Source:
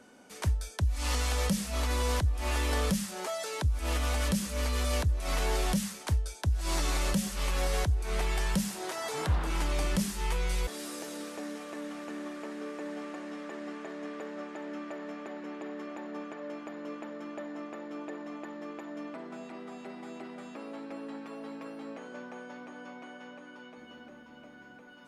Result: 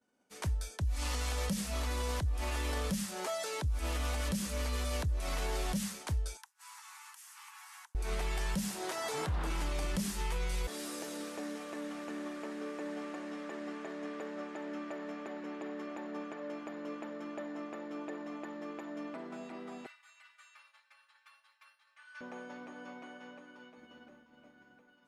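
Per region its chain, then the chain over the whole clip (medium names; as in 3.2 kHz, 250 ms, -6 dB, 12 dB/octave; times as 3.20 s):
6.37–7.95 s: steep high-pass 840 Hz 96 dB/octave + peaking EQ 3.9 kHz -8 dB 1.2 oct + compression 8:1, threshold -44 dBFS
19.86–22.21 s: inverse Chebyshev high-pass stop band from 380 Hz, stop band 60 dB + peaking EQ 9.1 kHz +3 dB 0.24 oct + comb 3.4 ms, depth 96%
whole clip: expander -44 dBFS; peak limiter -25 dBFS; trim -1.5 dB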